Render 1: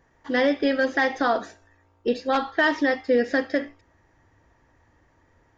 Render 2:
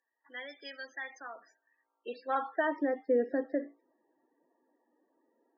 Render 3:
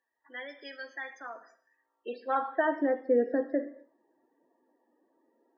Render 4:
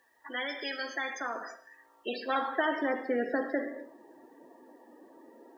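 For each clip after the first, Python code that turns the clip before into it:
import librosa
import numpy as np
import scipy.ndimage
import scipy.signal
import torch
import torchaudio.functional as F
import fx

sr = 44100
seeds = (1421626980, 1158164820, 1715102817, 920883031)

y1 = scipy.signal.sosfilt(scipy.signal.butter(4, 200.0, 'highpass', fs=sr, output='sos'), x)
y1 = fx.spec_topn(y1, sr, count=32)
y1 = fx.filter_sweep_bandpass(y1, sr, from_hz=6300.0, to_hz=390.0, start_s=1.44, end_s=2.91, q=0.89)
y1 = F.gain(torch.from_numpy(y1), -6.0).numpy()
y2 = fx.high_shelf(y1, sr, hz=3600.0, db=-8.0)
y2 = fx.rev_gated(y2, sr, seeds[0], gate_ms=280, shape='falling', drr_db=11.5)
y2 = F.gain(torch.from_numpy(y2), 3.0).numpy()
y3 = fx.spectral_comp(y2, sr, ratio=2.0)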